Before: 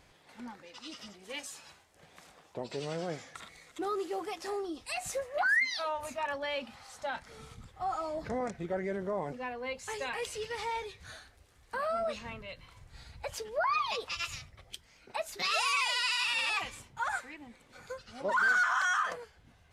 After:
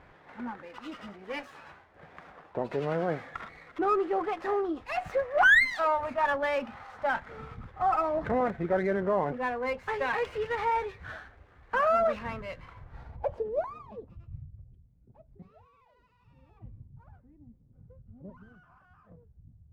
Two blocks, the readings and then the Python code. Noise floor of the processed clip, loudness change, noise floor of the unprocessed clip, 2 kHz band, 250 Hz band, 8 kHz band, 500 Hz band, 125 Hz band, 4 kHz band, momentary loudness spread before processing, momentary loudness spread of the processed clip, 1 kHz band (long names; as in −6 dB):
−63 dBFS, +4.5 dB, −63 dBFS, +2.5 dB, +6.5 dB, below −10 dB, +6.5 dB, +6.5 dB, −9.0 dB, 21 LU, 19 LU, +4.0 dB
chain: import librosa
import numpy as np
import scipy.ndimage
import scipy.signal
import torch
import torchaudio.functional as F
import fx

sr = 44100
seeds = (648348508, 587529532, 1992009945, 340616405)

y = fx.filter_sweep_lowpass(x, sr, from_hz=1600.0, to_hz=130.0, start_s=12.75, end_s=14.37, q=1.3)
y = fx.running_max(y, sr, window=3)
y = F.gain(torch.from_numpy(y), 6.5).numpy()